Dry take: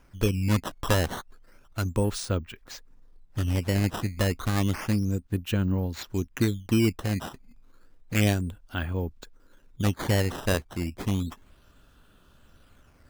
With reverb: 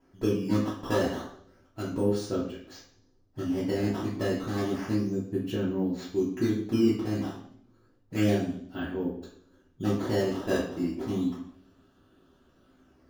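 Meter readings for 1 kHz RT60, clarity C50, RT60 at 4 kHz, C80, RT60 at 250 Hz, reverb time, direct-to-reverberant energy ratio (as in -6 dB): 0.55 s, 5.0 dB, 0.65 s, 8.5 dB, 0.65 s, 0.60 s, -7.5 dB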